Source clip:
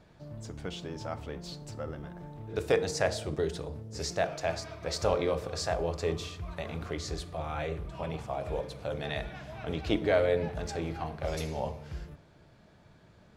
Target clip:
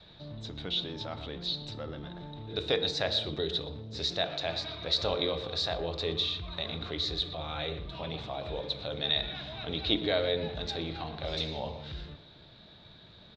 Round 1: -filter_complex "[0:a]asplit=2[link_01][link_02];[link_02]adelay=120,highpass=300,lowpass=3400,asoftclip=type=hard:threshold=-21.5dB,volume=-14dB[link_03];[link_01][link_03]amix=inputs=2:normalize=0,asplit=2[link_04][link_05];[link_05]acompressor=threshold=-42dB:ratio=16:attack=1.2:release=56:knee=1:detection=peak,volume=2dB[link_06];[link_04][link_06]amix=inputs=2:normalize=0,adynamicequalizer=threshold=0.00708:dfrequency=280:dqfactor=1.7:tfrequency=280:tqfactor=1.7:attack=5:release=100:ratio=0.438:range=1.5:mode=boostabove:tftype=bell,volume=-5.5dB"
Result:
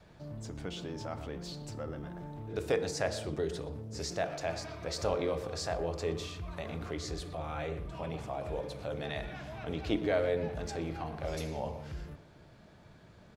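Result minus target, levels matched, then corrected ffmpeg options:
4,000 Hz band −10.5 dB
-filter_complex "[0:a]asplit=2[link_01][link_02];[link_02]adelay=120,highpass=300,lowpass=3400,asoftclip=type=hard:threshold=-21.5dB,volume=-14dB[link_03];[link_01][link_03]amix=inputs=2:normalize=0,asplit=2[link_04][link_05];[link_05]acompressor=threshold=-42dB:ratio=16:attack=1.2:release=56:knee=1:detection=peak,volume=2dB[link_06];[link_04][link_06]amix=inputs=2:normalize=0,adynamicequalizer=threshold=0.00708:dfrequency=280:dqfactor=1.7:tfrequency=280:tqfactor=1.7:attack=5:release=100:ratio=0.438:range=1.5:mode=boostabove:tftype=bell,lowpass=frequency=3800:width_type=q:width=16,volume=-5.5dB"

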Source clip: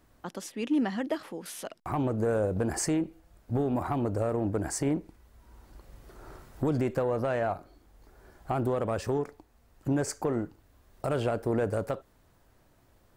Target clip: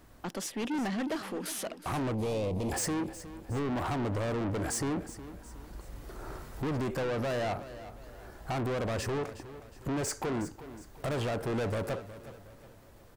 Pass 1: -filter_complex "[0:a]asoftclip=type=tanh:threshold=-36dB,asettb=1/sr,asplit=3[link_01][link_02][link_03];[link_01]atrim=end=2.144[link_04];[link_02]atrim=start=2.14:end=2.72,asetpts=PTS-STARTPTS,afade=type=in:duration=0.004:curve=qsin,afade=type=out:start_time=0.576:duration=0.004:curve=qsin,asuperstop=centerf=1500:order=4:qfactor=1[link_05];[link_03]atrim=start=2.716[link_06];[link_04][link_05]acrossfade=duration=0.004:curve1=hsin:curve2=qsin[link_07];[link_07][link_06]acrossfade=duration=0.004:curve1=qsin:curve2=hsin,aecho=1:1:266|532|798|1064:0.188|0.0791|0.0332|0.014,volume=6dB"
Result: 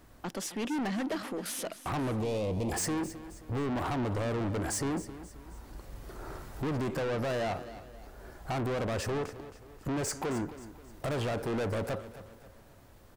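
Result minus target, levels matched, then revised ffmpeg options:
echo 99 ms early
-filter_complex "[0:a]asoftclip=type=tanh:threshold=-36dB,asettb=1/sr,asplit=3[link_01][link_02][link_03];[link_01]atrim=end=2.144[link_04];[link_02]atrim=start=2.14:end=2.72,asetpts=PTS-STARTPTS,afade=type=in:duration=0.004:curve=qsin,afade=type=out:start_time=0.576:duration=0.004:curve=qsin,asuperstop=centerf=1500:order=4:qfactor=1[link_05];[link_03]atrim=start=2.716[link_06];[link_04][link_05]acrossfade=duration=0.004:curve1=hsin:curve2=qsin[link_07];[link_07][link_06]acrossfade=duration=0.004:curve1=qsin:curve2=hsin,aecho=1:1:365|730|1095|1460:0.188|0.0791|0.0332|0.014,volume=6dB"

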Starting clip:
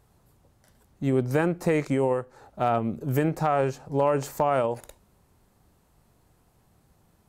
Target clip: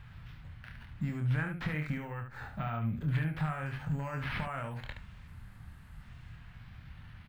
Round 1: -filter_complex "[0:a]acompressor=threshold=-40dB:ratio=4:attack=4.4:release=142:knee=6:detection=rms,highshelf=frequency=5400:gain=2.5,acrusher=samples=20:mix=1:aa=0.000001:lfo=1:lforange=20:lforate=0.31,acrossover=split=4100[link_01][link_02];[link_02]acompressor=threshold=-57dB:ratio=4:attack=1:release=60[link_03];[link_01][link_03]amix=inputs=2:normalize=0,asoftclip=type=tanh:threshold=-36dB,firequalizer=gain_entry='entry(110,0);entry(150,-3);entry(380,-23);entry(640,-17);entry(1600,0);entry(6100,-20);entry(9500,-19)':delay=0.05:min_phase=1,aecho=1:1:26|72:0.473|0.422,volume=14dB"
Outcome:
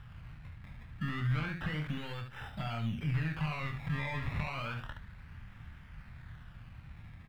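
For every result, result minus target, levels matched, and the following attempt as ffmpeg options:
soft clipping: distortion +15 dB; sample-and-hold swept by an LFO: distortion +11 dB
-filter_complex "[0:a]acompressor=threshold=-40dB:ratio=4:attack=4.4:release=142:knee=6:detection=rms,highshelf=frequency=5400:gain=2.5,acrusher=samples=20:mix=1:aa=0.000001:lfo=1:lforange=20:lforate=0.31,acrossover=split=4100[link_01][link_02];[link_02]acompressor=threshold=-57dB:ratio=4:attack=1:release=60[link_03];[link_01][link_03]amix=inputs=2:normalize=0,asoftclip=type=tanh:threshold=-26dB,firequalizer=gain_entry='entry(110,0);entry(150,-3);entry(380,-23);entry(640,-17);entry(1600,0);entry(6100,-20);entry(9500,-19)':delay=0.05:min_phase=1,aecho=1:1:26|72:0.473|0.422,volume=14dB"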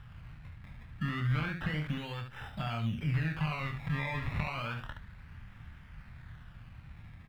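sample-and-hold swept by an LFO: distortion +11 dB
-filter_complex "[0:a]acompressor=threshold=-40dB:ratio=4:attack=4.4:release=142:knee=6:detection=rms,highshelf=frequency=5400:gain=2.5,acrusher=samples=4:mix=1:aa=0.000001:lfo=1:lforange=4:lforate=0.31,acrossover=split=4100[link_01][link_02];[link_02]acompressor=threshold=-57dB:ratio=4:attack=1:release=60[link_03];[link_01][link_03]amix=inputs=2:normalize=0,asoftclip=type=tanh:threshold=-26dB,firequalizer=gain_entry='entry(110,0);entry(150,-3);entry(380,-23);entry(640,-17);entry(1600,0);entry(6100,-20);entry(9500,-19)':delay=0.05:min_phase=1,aecho=1:1:26|72:0.473|0.422,volume=14dB"

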